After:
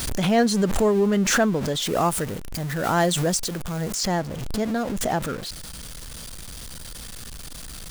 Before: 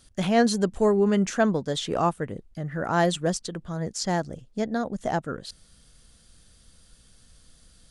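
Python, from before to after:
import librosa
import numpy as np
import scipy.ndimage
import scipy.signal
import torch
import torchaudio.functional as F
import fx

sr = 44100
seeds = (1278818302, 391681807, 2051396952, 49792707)

y = x + 0.5 * 10.0 ** (-32.0 / 20.0) * np.sign(x)
y = fx.high_shelf(y, sr, hz=5800.0, db=9.0, at=(1.82, 3.95))
y = fx.pre_swell(y, sr, db_per_s=41.0)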